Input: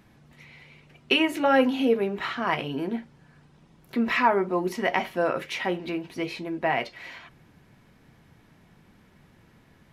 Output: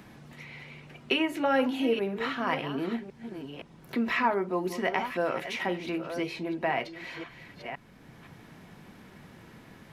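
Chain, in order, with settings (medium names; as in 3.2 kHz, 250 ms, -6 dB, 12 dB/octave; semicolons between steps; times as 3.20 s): chunks repeated in reverse 517 ms, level -12 dB; three bands compressed up and down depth 40%; trim -3.5 dB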